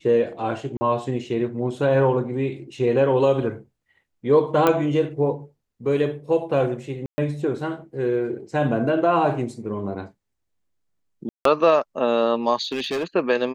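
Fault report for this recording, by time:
0.77–0.81 s: dropout 40 ms
4.67 s: pop -6 dBFS
7.06–7.18 s: dropout 120 ms
11.29–11.45 s: dropout 163 ms
12.63–13.04 s: clipped -21 dBFS

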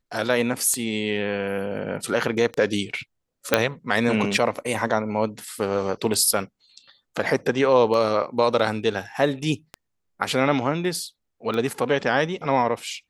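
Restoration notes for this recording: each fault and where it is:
tick 33 1/3 rpm -16 dBFS
3.54 s: pop -1 dBFS

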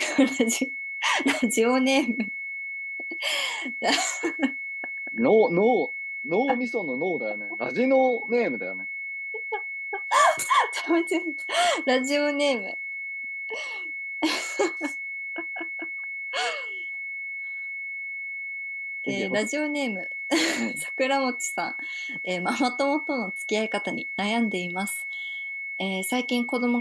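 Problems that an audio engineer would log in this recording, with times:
whine 2.2 kHz -31 dBFS

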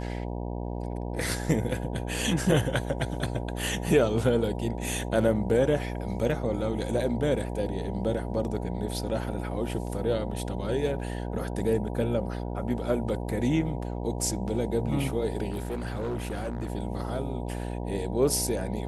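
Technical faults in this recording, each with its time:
buzz 60 Hz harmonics 16 -33 dBFS
15.50–16.70 s: clipped -27.5 dBFS

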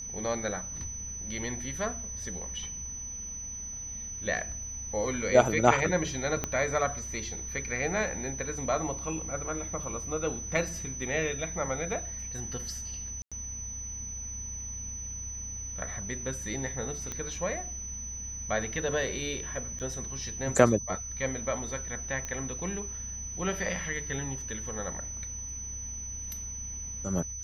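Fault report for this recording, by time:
whine 6 kHz -37 dBFS
6.44 s: pop -15 dBFS
13.22–13.32 s: dropout 96 ms
17.12 s: pop -20 dBFS
19.79–19.80 s: dropout 8.9 ms
22.25 s: pop -21 dBFS

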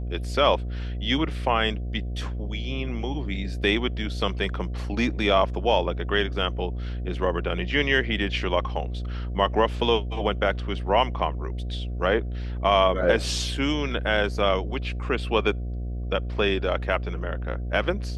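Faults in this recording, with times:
buzz 60 Hz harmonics 12 -30 dBFS

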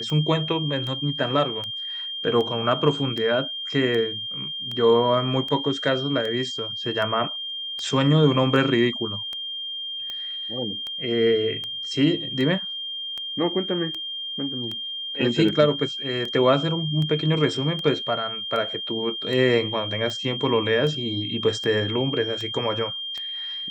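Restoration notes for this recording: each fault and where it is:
tick 78 rpm -19 dBFS
whine 3.2 kHz -29 dBFS

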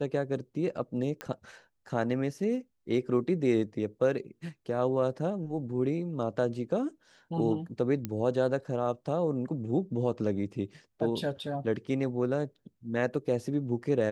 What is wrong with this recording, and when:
1.21 s: pop -20 dBFS
8.05 s: pop -18 dBFS

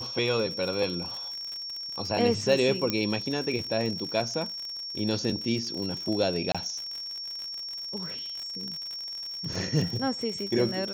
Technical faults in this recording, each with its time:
crackle 76 per s -33 dBFS
whine 5.5 kHz -34 dBFS
2.90 s: pop -11 dBFS
6.52–6.55 s: dropout 26 ms

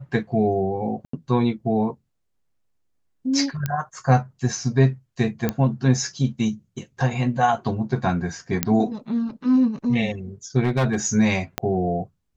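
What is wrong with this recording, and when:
1.05–1.13 s: dropout 84 ms
3.66 s: pop -11 dBFS
5.49 s: pop -9 dBFS
8.63 s: pop -3 dBFS
10.63–10.95 s: clipped -16 dBFS
11.58 s: pop -7 dBFS

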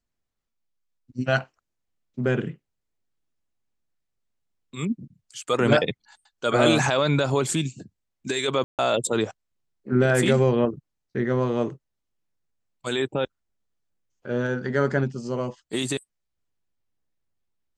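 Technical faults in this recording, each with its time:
8.64–8.79 s: dropout 148 ms

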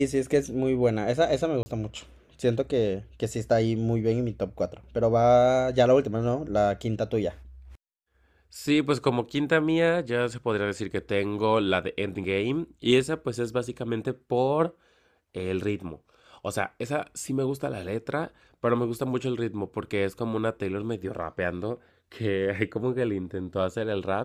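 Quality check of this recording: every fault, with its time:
1.63–1.66 s: dropout 30 ms

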